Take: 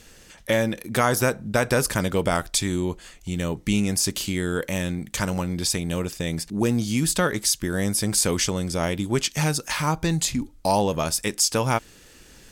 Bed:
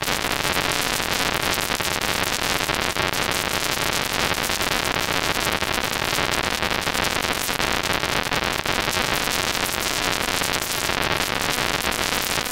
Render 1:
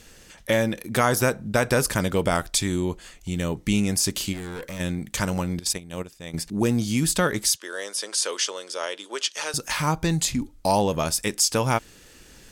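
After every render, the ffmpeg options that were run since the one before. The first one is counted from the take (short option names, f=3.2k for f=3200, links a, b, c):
-filter_complex "[0:a]asplit=3[a][b][c];[a]afade=t=out:st=4.32:d=0.02[d];[b]aeval=exprs='(tanh(35.5*val(0)+0.4)-tanh(0.4))/35.5':c=same,afade=t=in:st=4.32:d=0.02,afade=t=out:st=4.79:d=0.02[e];[c]afade=t=in:st=4.79:d=0.02[f];[d][e][f]amix=inputs=3:normalize=0,asettb=1/sr,asplit=3[g][h][i];[g]atrim=end=5.594[j];[h]atrim=start=5.59:end=6.34,asetpts=PTS-STARTPTS,afade=t=in:d=0.004:c=qsin,afade=t=out:st=0.746:d=0.004:c=qsin,agate=range=-15dB:threshold=-25dB:ratio=16:release=100:detection=peak[k];[i]atrim=start=6.336[l];[j][k]acrossfade=d=0.004:c1=hsin:c2=qsin[m];[m][l]acrossfade=d=0.004:c1=qsin:c2=hsin,asettb=1/sr,asplit=3[n][o][p];[n]atrim=end=7.564[q];[o]atrim=start=7.56:end=9.54,asetpts=PTS-STARTPTS,afade=t=in:d=0.004:c=qsin,afade=t=out:st=1.976:d=0.004:c=qsin,highpass=f=480:w=0.5412,highpass=f=480:w=1.3066,equalizer=f=750:t=q:w=4:g=-10,equalizer=f=2.2k:t=q:w=4:g=-6,equalizer=f=3.1k:t=q:w=4:g=3,equalizer=f=7.8k:t=q:w=4:g=-5,lowpass=f=9.3k:w=0.5412,lowpass=f=9.3k:w=1.3066[r];[p]atrim=start=9.536[s];[q][r]acrossfade=d=0.004:c1=hsin:c2=qsin[t];[t][s]acrossfade=d=0.004:c1=qsin:c2=hsin"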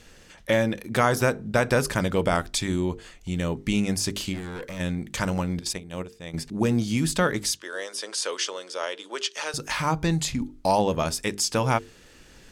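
-af "highshelf=f=7.1k:g=-10.5,bandreject=f=50:t=h:w=6,bandreject=f=100:t=h:w=6,bandreject=f=150:t=h:w=6,bandreject=f=200:t=h:w=6,bandreject=f=250:t=h:w=6,bandreject=f=300:t=h:w=6,bandreject=f=350:t=h:w=6,bandreject=f=400:t=h:w=6,bandreject=f=450:t=h:w=6"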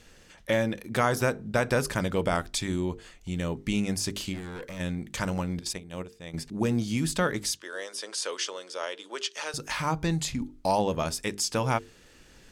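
-af "volume=-3.5dB"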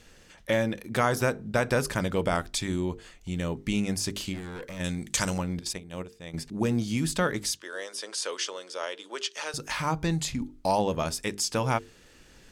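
-filter_complex "[0:a]asettb=1/sr,asplit=3[a][b][c];[a]atrim=end=4.844[d];[b]atrim=start=4.84:end=5.38,asetpts=PTS-STARTPTS,afade=t=in:d=0.004:c=qsin,afade=t=out:st=0.536:d=0.004:c=qsin,equalizer=f=7.7k:t=o:w=2.1:g=13[e];[c]atrim=start=5.376[f];[d][e]acrossfade=d=0.004:c1=hsin:c2=qsin[g];[g][f]acrossfade=d=0.004:c1=qsin:c2=hsin"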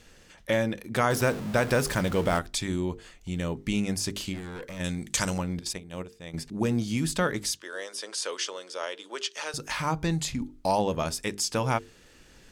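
-filter_complex "[0:a]asettb=1/sr,asplit=3[a][b][c];[a]atrim=end=1.104[d];[b]atrim=start=1.1:end=2.39,asetpts=PTS-STARTPTS,afade=t=in:d=0.004:c=qsin,afade=t=out:st=1.286:d=0.004:c=qsin,aeval=exprs='val(0)+0.5*0.0224*sgn(val(0))':c=same[e];[c]atrim=start=2.386[f];[d][e]acrossfade=d=0.004:c1=hsin:c2=qsin[g];[g][f]acrossfade=d=0.004:c1=qsin:c2=hsin"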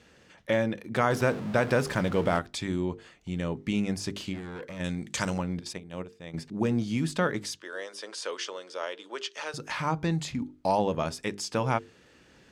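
-af "highpass=90,aemphasis=mode=reproduction:type=50kf"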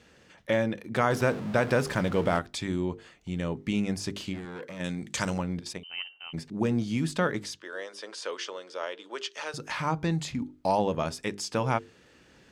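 -filter_complex "[0:a]asettb=1/sr,asplit=3[a][b][c];[a]atrim=end=4.454[d];[b]atrim=start=4.45:end=5.03,asetpts=PTS-STARTPTS,afade=t=in:d=0.004:c=qsin,afade=t=out:st=0.576:d=0.004:c=qsin,highpass=130[e];[c]atrim=start=5.026[f];[d][e]acrossfade=d=0.004:c1=hsin:c2=qsin[g];[g][f]acrossfade=d=0.004:c1=qsin:c2=hsin,asettb=1/sr,asplit=3[h][i][j];[h]atrim=end=5.834[k];[i]atrim=start=5.83:end=6.33,asetpts=PTS-STARTPTS,afade=t=in:d=0.004:c=qsin,afade=t=out:st=0.496:d=0.004:c=qsin,lowpass=f=2.7k:t=q:w=0.5098,lowpass=f=2.7k:t=q:w=0.6013,lowpass=f=2.7k:t=q:w=0.9,lowpass=f=2.7k:t=q:w=2.563,afreqshift=-3200[l];[j]atrim=start=6.326[m];[k][l]acrossfade=d=0.004:c1=hsin:c2=qsin[n];[n][m]acrossfade=d=0.004:c1=qsin:c2=hsin,asettb=1/sr,asplit=3[o][p][q];[o]atrim=end=7.444[r];[p]atrim=start=7.44:end=9.11,asetpts=PTS-STARTPTS,afade=t=in:d=0.004:c=qsin,afade=t=out:st=1.666:d=0.004:c=qsin,highshelf=f=7.4k:g=-7[s];[q]atrim=start=9.106[t];[r][s]acrossfade=d=0.004:c1=hsin:c2=qsin[u];[u][t]acrossfade=d=0.004:c1=qsin:c2=hsin"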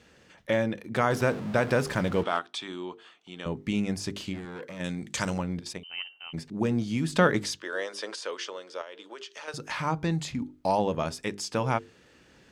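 -filter_complex "[0:a]asettb=1/sr,asplit=3[a][b][c];[a]atrim=end=2.234[d];[b]atrim=start=2.23:end=3.46,asetpts=PTS-STARTPTS,afade=t=in:d=0.004:c=qsin,afade=t=out:st=1.226:d=0.004:c=qsin,highpass=420,equalizer=f=540:t=q:w=4:g=-8,equalizer=f=1.2k:t=q:w=4:g=4,equalizer=f=2k:t=q:w=4:g=-5,equalizer=f=3.3k:t=q:w=4:g=6,equalizer=f=4.9k:t=q:w=4:g=-5,equalizer=f=7k:t=q:w=4:g=-8,lowpass=f=8.5k:w=0.5412,lowpass=f=8.5k:w=1.3066[e];[c]atrim=start=3.456[f];[d][e]acrossfade=d=0.004:c1=hsin:c2=qsin[g];[g][f]acrossfade=d=0.004:c1=qsin:c2=hsin,asettb=1/sr,asplit=3[h][i][j];[h]atrim=end=7.134[k];[i]atrim=start=7.13:end=8.16,asetpts=PTS-STARTPTS,afade=t=in:d=0.004:c=qsin,afade=t=out:st=1.026:d=0.004:c=qsin,acontrast=38[l];[j]atrim=start=8.156[m];[k][l]acrossfade=d=0.004:c1=hsin:c2=qsin[n];[n][m]acrossfade=d=0.004:c1=qsin:c2=hsin,asettb=1/sr,asplit=3[o][p][q];[o]atrim=end=8.814[r];[p]atrim=start=8.81:end=9.48,asetpts=PTS-STARTPTS,afade=t=in:d=0.004:c=qsin,afade=t=out:st=0.666:d=0.004:c=qsin,acompressor=threshold=-37dB:ratio=12:attack=3.2:release=140:knee=1:detection=peak[s];[q]atrim=start=9.476[t];[r][s]acrossfade=d=0.004:c1=hsin:c2=qsin[u];[u][t]acrossfade=d=0.004:c1=qsin:c2=hsin"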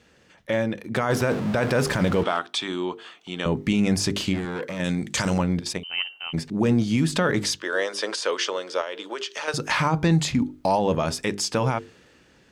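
-af "dynaudnorm=f=190:g=9:m=11.5dB,alimiter=limit=-12dB:level=0:latency=1:release=21"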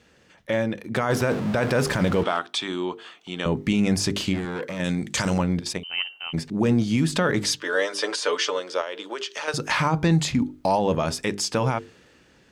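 -filter_complex "[0:a]asettb=1/sr,asplit=3[a][b][c];[a]atrim=end=7.474[d];[b]atrim=start=7.47:end=8.6,asetpts=PTS-STARTPTS,afade=t=in:d=0.004:c=qsin,afade=t=out:st=1.126:d=0.004:c=qsin,aecho=1:1:6.8:0.65,atrim=end_sample=49833[e];[c]atrim=start=8.596[f];[d][e]acrossfade=d=0.004:c1=hsin:c2=qsin[g];[g][f]acrossfade=d=0.004:c1=qsin:c2=hsin"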